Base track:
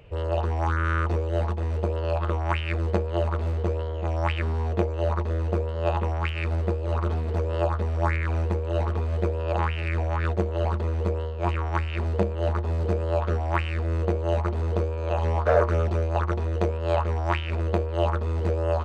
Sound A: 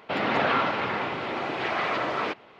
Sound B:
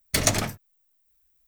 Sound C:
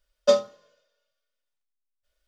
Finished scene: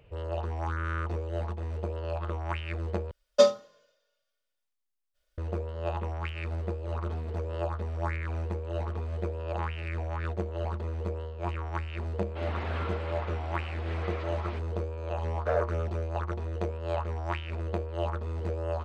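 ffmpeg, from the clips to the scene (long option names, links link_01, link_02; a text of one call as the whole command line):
ffmpeg -i bed.wav -i cue0.wav -i cue1.wav -i cue2.wav -filter_complex "[0:a]volume=-7.5dB,asplit=2[link_01][link_02];[link_01]atrim=end=3.114[link_03];[3:a]atrim=end=2.27,asetpts=PTS-STARTPTS,volume=-0.5dB[link_04];[link_02]atrim=start=5.376[link_05];[1:a]atrim=end=2.59,asetpts=PTS-STARTPTS,volume=-14.5dB,afade=type=in:duration=0.004:curve=hsin,afade=type=out:start_time=2.586:duration=0.004:curve=hsin,adelay=12260[link_06];[link_03][link_04]acrossfade=duration=0.004:curve1=hsin:curve2=hsin[link_07];[link_07][link_05]acrossfade=duration=0.004:curve1=hsin:curve2=hsin[link_08];[link_08][link_06]amix=inputs=2:normalize=0" out.wav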